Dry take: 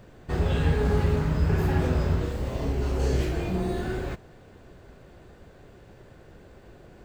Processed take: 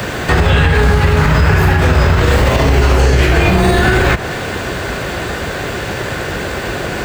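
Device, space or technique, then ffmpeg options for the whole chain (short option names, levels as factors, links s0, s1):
mastering chain: -filter_complex "[0:a]highpass=49,equalizer=f=1700:t=o:w=1.6:g=3,acrossover=split=150|360|2900[s0][s1][s2][s3];[s0]acompressor=threshold=0.0562:ratio=4[s4];[s1]acompressor=threshold=0.00631:ratio=4[s5];[s2]acompressor=threshold=0.0141:ratio=4[s6];[s3]acompressor=threshold=0.00126:ratio=4[s7];[s4][s5][s6][s7]amix=inputs=4:normalize=0,acompressor=threshold=0.0251:ratio=6,tiltshelf=f=940:g=-5,alimiter=level_in=44.7:limit=0.891:release=50:level=0:latency=1,volume=0.891"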